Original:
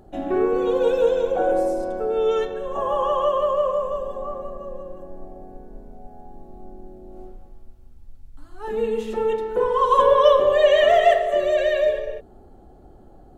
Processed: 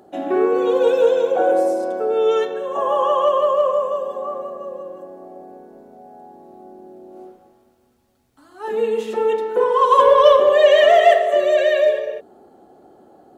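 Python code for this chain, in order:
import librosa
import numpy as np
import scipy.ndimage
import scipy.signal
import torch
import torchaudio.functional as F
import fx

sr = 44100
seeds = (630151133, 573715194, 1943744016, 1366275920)

p1 = scipy.signal.sosfilt(scipy.signal.butter(2, 280.0, 'highpass', fs=sr, output='sos'), x)
p2 = np.clip(p1, -10.0 ** (-13.5 / 20.0), 10.0 ** (-13.5 / 20.0))
p3 = p1 + (p2 * librosa.db_to_amplitude(-10.5))
y = p3 * librosa.db_to_amplitude(2.0)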